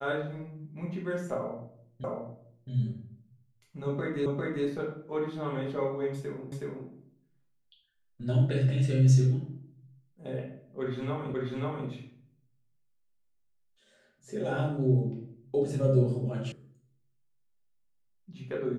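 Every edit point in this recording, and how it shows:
2.04 repeat of the last 0.67 s
4.26 repeat of the last 0.4 s
6.52 repeat of the last 0.37 s
11.34 repeat of the last 0.54 s
16.52 sound cut off

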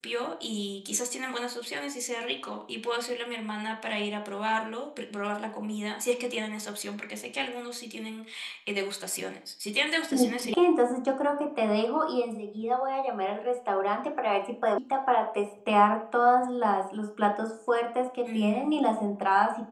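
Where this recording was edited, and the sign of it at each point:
10.54 sound cut off
14.78 sound cut off

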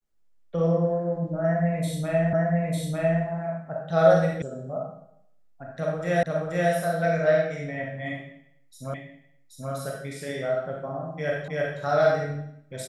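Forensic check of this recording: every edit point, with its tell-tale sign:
2.33 repeat of the last 0.9 s
4.42 sound cut off
6.23 repeat of the last 0.48 s
8.94 repeat of the last 0.78 s
11.48 repeat of the last 0.32 s

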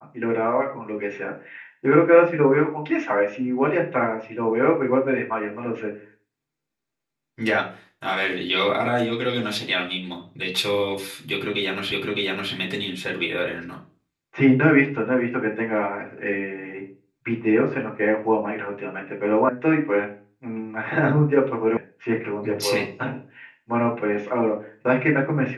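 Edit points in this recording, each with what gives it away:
11.92 repeat of the last 0.61 s
19.49 sound cut off
21.77 sound cut off

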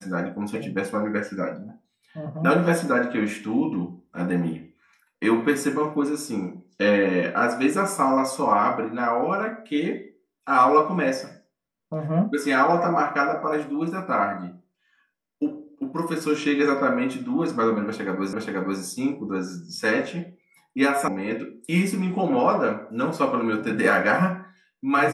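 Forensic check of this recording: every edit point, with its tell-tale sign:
18.33 repeat of the last 0.48 s
21.08 sound cut off

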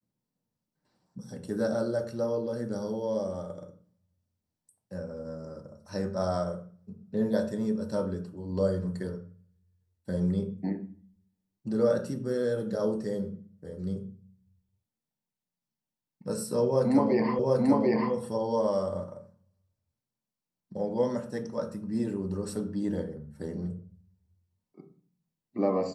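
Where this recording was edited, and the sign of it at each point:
17.39 repeat of the last 0.74 s

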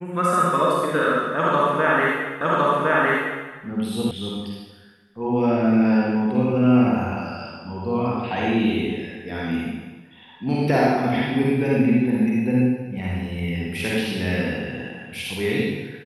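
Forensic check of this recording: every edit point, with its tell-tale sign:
2.41 repeat of the last 1.06 s
4.11 sound cut off

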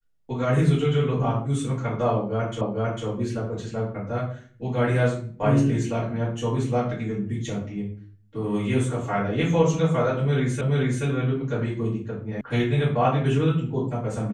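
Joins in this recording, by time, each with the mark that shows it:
2.61 repeat of the last 0.45 s
10.61 repeat of the last 0.43 s
12.41 sound cut off

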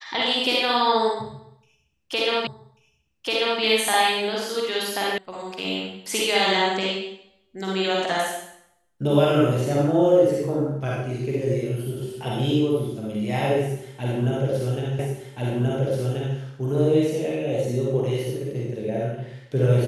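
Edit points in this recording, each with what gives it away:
2.47 repeat of the last 1.14 s
5.18 sound cut off
14.99 repeat of the last 1.38 s

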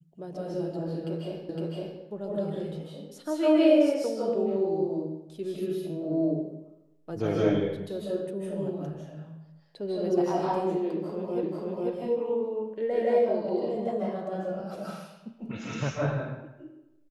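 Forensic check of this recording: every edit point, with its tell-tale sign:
1.49 repeat of the last 0.51 s
11.43 repeat of the last 0.49 s

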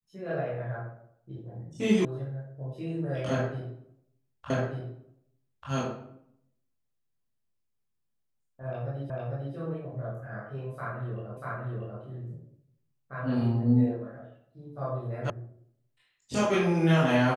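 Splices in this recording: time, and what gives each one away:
2.05 sound cut off
4.5 repeat of the last 1.19 s
9.1 repeat of the last 0.45 s
11.37 repeat of the last 0.64 s
15.3 sound cut off

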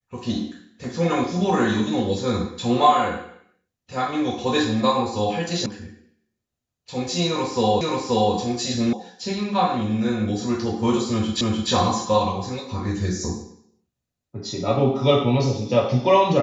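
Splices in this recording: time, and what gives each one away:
5.66 sound cut off
7.81 repeat of the last 0.53 s
8.93 sound cut off
11.41 repeat of the last 0.3 s

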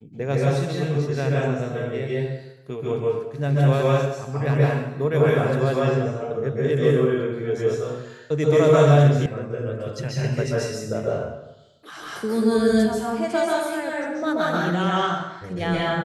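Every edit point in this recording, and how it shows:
9.26 sound cut off

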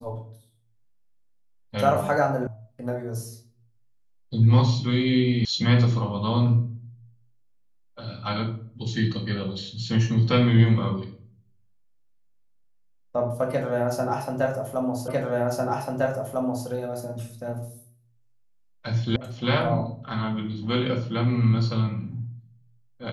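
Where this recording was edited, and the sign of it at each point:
2.47 sound cut off
5.45 sound cut off
15.08 repeat of the last 1.6 s
19.16 sound cut off

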